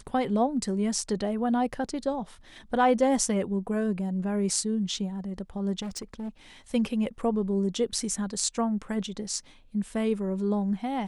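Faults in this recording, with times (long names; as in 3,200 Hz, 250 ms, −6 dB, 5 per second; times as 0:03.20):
0:05.82–0:06.29: clipping −31.5 dBFS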